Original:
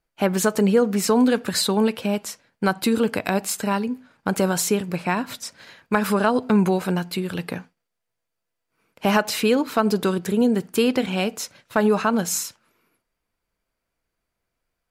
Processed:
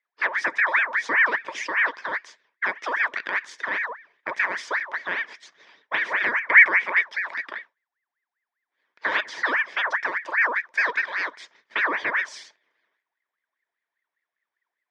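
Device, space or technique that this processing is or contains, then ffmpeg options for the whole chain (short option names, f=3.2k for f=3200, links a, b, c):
voice changer toy: -filter_complex "[0:a]aeval=exprs='val(0)*sin(2*PI*1400*n/s+1400*0.5/5*sin(2*PI*5*n/s))':c=same,highpass=500,equalizer=f=520:t=q:w=4:g=-5,equalizer=f=760:t=q:w=4:g=-9,equalizer=f=1.3k:t=q:w=4:g=-8,equalizer=f=1.8k:t=q:w=4:g=7,equalizer=f=2.8k:t=q:w=4:g=-10,equalizer=f=4.2k:t=q:w=4:g=-9,lowpass=f=4.5k:w=0.5412,lowpass=f=4.5k:w=1.3066,asettb=1/sr,asplit=3[a][b][c];[a]atrim=end=6.394[d];[b]atrim=start=6.39:end=7.01,asetpts=PTS-STARTPTS,afade=t=in:d=0.004:c=qsin,afade=t=out:st=0.616:d=0.004:c=qsin,equalizer=f=2.2k:t=o:w=0.47:g=12[e];[c]atrim=start=7.006[f];[d][e]acrossfade=d=0.004:c1=hsin:c2=qsin[g];[g][f]acrossfade=d=0.004:c1=qsin:c2=hsin"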